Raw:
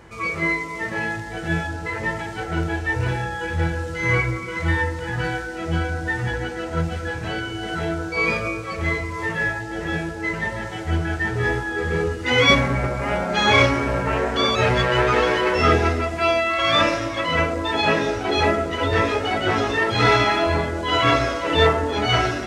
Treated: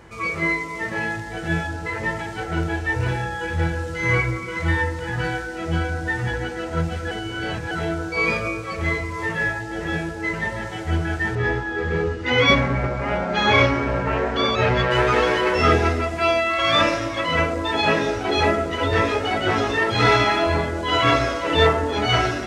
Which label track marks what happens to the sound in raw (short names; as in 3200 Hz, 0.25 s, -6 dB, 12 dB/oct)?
7.110000	7.710000	reverse
11.350000	14.910000	air absorption 97 m